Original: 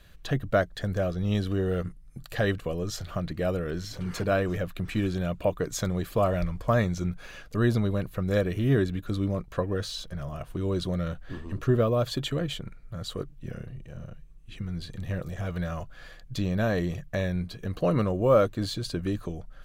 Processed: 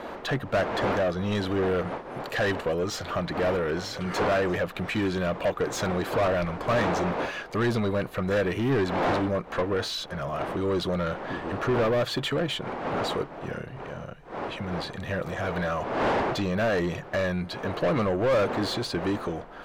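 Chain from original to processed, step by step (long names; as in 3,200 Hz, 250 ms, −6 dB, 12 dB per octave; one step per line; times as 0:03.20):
wind on the microphone 620 Hz −38 dBFS
mid-hump overdrive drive 26 dB, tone 2,200 Hz, clips at −10 dBFS
level −6 dB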